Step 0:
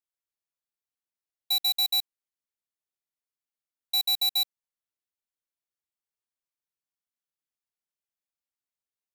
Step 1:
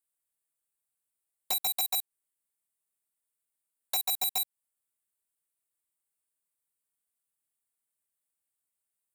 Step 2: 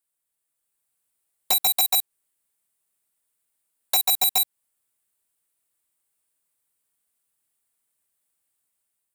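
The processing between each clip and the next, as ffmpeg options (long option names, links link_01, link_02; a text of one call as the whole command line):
ffmpeg -i in.wav -af "highshelf=frequency=7100:width_type=q:width=3:gain=7.5,acompressor=threshold=-26dB:ratio=8,aeval=exprs='(mod(11.9*val(0)+1,2)-1)/11.9':channel_layout=same" out.wav
ffmpeg -i in.wav -af "dynaudnorm=framelen=260:gausssize=5:maxgain=5dB,volume=4dB" out.wav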